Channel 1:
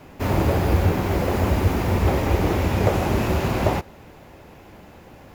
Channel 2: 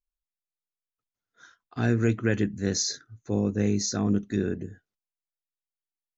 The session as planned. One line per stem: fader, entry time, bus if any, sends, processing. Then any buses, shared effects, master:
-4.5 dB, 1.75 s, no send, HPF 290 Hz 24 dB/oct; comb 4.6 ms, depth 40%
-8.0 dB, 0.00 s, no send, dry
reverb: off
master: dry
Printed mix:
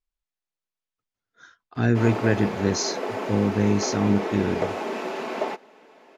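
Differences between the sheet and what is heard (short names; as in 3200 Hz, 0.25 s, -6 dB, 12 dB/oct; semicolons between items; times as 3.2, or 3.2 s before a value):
stem 2 -8.0 dB -> +3.5 dB; master: extra air absorption 68 m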